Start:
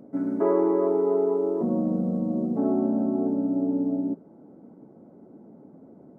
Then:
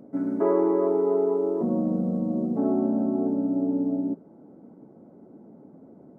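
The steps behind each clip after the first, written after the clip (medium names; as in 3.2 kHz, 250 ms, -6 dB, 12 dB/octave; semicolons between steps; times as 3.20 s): no audible change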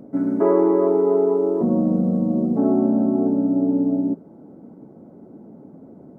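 bass shelf 150 Hz +5.5 dB; trim +4.5 dB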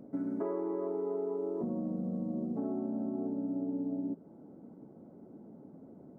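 compression, threshold -23 dBFS, peak gain reduction 10 dB; trim -9 dB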